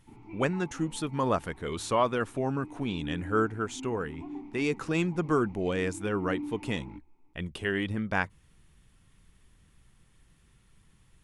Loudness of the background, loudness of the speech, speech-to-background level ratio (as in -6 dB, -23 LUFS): -44.0 LUFS, -31.0 LUFS, 13.0 dB